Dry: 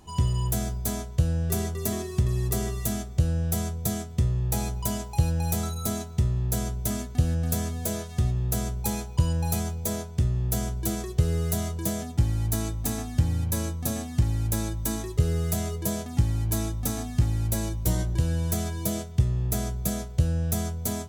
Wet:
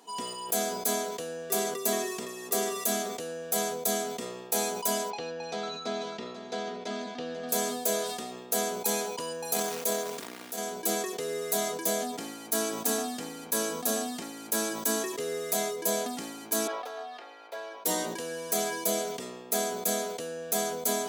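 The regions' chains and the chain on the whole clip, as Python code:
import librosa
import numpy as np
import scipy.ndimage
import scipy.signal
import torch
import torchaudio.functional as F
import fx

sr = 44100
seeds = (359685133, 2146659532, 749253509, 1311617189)

y = fx.chain(x, sr, fx.lowpass(hz=4600.0, slope=24),
    fx.echo_single(ms=491, db=-12.0), at=(5.1, 7.49))
y = fx.chain(y, sr, fx.transient(attack_db=-5, sustain_db=-11),
    fx.over_compress(threshold_db=-29.0, ratio=-0.5),
    fx.quant_float(bits=2), at=(9.54, 10.58))
y = fx.chain(y, sr, fx.highpass(hz=500.0, slope=24),
    fx.air_absorb(metres=320.0), at=(16.67, 17.85))
y = scipy.signal.sosfilt(scipy.signal.butter(4, 310.0, 'highpass', fs=sr, output='sos'), y)
y = y + 0.61 * np.pad(y, (int(4.3 * sr / 1000.0), 0))[:len(y)]
y = fx.sustainer(y, sr, db_per_s=39.0)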